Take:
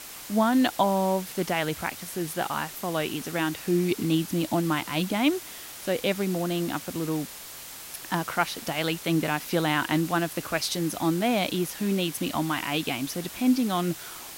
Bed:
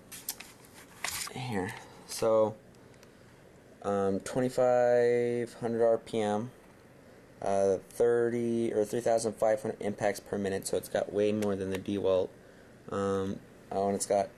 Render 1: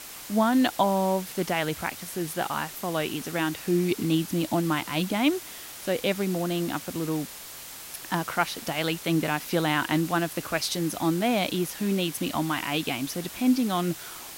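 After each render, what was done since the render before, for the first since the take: no audible change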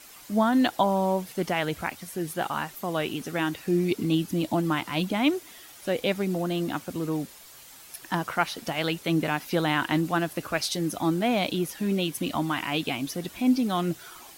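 noise reduction 9 dB, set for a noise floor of -42 dBFS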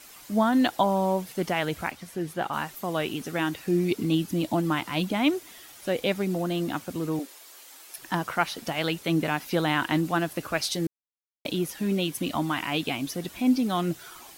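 1.90–2.52 s: treble shelf 8.3 kHz -> 4.2 kHz -9.5 dB; 7.19–7.98 s: steep high-pass 270 Hz 48 dB/octave; 10.87–11.45 s: mute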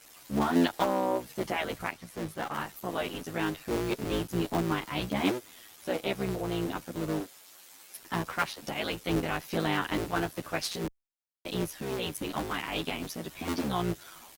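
cycle switcher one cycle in 3, muted; endless flanger 10.3 ms -0.83 Hz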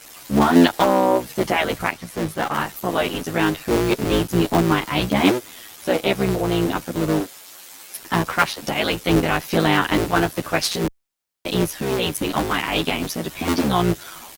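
trim +11.5 dB; peak limiter -2 dBFS, peak gain reduction 2 dB

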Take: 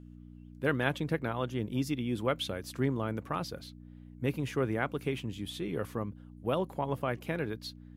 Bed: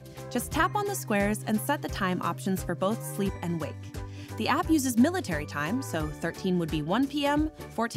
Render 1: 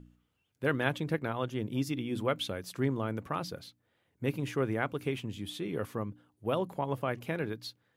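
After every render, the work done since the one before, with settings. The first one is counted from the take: de-hum 60 Hz, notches 5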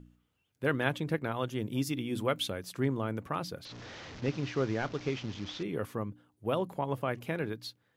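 1.31–2.50 s: treble shelf 4.9 kHz +6 dB; 3.65–5.63 s: one-bit delta coder 32 kbps, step -40 dBFS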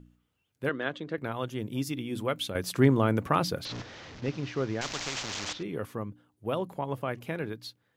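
0.69–1.18 s: cabinet simulation 250–5800 Hz, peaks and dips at 870 Hz -8 dB, 2.4 kHz -7 dB, 5.4 kHz -6 dB; 2.55–3.82 s: gain +9 dB; 4.81–5.53 s: spectrum-flattening compressor 4:1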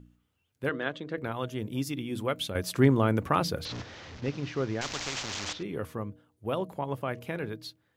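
peaking EQ 82 Hz +9.5 dB 0.23 oct; de-hum 158 Hz, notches 4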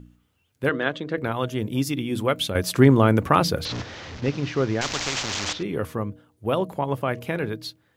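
trim +7.5 dB; peak limiter -3 dBFS, peak gain reduction 2.5 dB

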